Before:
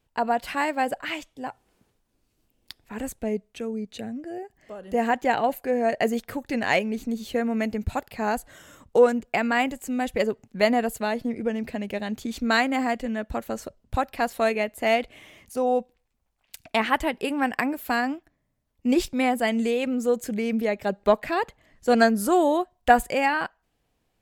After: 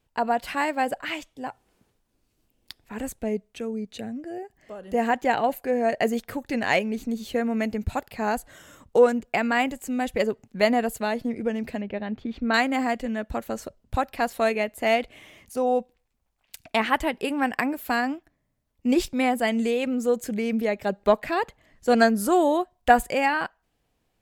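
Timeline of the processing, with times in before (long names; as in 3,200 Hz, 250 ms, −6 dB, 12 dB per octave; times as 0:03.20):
0:11.81–0:12.54: high-frequency loss of the air 350 metres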